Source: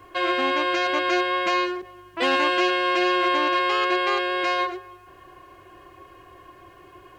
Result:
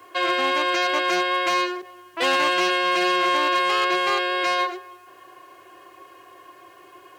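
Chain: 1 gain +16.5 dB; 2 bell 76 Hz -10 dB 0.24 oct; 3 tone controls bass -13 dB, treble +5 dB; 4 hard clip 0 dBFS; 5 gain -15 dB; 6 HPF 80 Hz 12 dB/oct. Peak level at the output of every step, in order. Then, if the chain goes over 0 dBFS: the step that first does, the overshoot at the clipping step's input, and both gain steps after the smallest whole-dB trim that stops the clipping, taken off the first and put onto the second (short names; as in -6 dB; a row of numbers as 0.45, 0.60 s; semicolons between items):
+7.0, +7.0, +8.0, 0.0, -15.0, -13.0 dBFS; step 1, 8.0 dB; step 1 +8.5 dB, step 5 -7 dB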